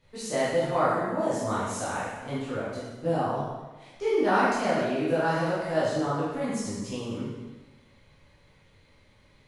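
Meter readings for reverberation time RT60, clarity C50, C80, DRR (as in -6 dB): 1.2 s, -1.5 dB, 1.5 dB, -10.5 dB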